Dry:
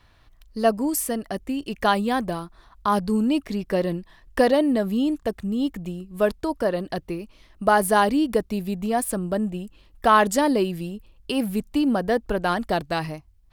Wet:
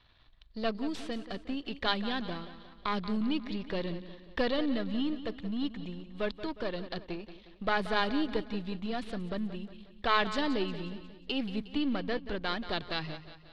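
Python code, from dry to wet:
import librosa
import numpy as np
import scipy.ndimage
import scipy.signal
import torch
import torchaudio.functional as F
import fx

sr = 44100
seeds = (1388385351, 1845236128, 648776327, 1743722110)

y = np.where(x < 0.0, 10.0 ** (-7.0 / 20.0) * x, x)
y = fx.dynamic_eq(y, sr, hz=710.0, q=1.1, threshold_db=-35.0, ratio=4.0, max_db=-6)
y = fx.ladder_lowpass(y, sr, hz=4300.0, resonance_pct=55)
y = fx.echo_feedback(y, sr, ms=180, feedback_pct=49, wet_db=-13.0)
y = F.gain(torch.from_numpy(y), 4.0).numpy()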